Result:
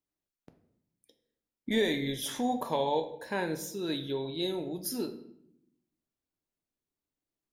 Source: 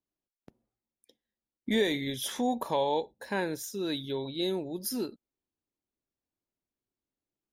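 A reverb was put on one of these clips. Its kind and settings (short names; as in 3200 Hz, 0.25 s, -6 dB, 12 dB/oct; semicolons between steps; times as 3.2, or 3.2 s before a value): shoebox room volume 180 m³, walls mixed, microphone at 0.43 m; gain -1.5 dB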